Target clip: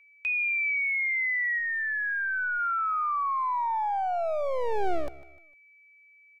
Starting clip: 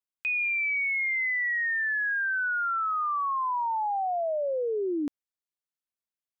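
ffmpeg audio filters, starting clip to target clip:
ffmpeg -i in.wav -filter_complex "[0:a]aecho=1:1:151|302|453:0.1|0.043|0.0185,aeval=exprs='val(0)+0.00178*sin(2*PI*2300*n/s)':channel_layout=same,lowshelf=frequency=240:width_type=q:width=3:gain=-13.5,acrossover=split=110|490|1600[link_01][link_02][link_03][link_04];[link_02]aeval=exprs='abs(val(0))':channel_layout=same[link_05];[link_01][link_05][link_03][link_04]amix=inputs=4:normalize=0,asplit=3[link_06][link_07][link_08];[link_06]afade=type=out:start_time=1.58:duration=0.02[link_09];[link_07]aemphasis=mode=reproduction:type=riaa,afade=type=in:start_time=1.58:duration=0.02,afade=type=out:start_time=2.58:duration=0.02[link_10];[link_08]afade=type=in:start_time=2.58:duration=0.02[link_11];[link_09][link_10][link_11]amix=inputs=3:normalize=0" out.wav

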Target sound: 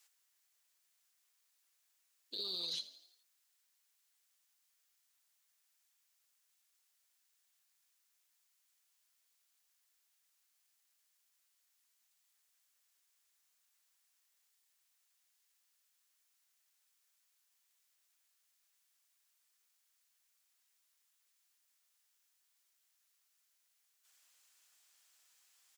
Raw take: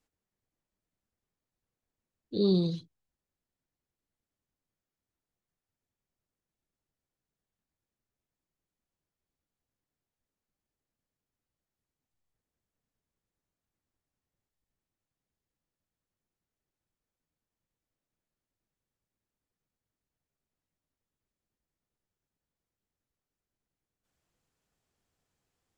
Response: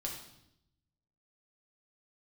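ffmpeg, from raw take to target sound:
-filter_complex "[0:a]highpass=1200,highshelf=frequency=2800:gain=11,alimiter=level_in=13.5dB:limit=-24dB:level=0:latency=1:release=84,volume=-13.5dB,asoftclip=type=hard:threshold=-39.5dB,asplit=2[link_01][link_02];[link_02]asplit=5[link_03][link_04][link_05][link_06][link_07];[link_03]adelay=84,afreqshift=48,volume=-16dB[link_08];[link_04]adelay=168,afreqshift=96,volume=-21.5dB[link_09];[link_05]adelay=252,afreqshift=144,volume=-27dB[link_10];[link_06]adelay=336,afreqshift=192,volume=-32.5dB[link_11];[link_07]adelay=420,afreqshift=240,volume=-38.1dB[link_12];[link_08][link_09][link_10][link_11][link_12]amix=inputs=5:normalize=0[link_13];[link_01][link_13]amix=inputs=2:normalize=0,volume=7dB"

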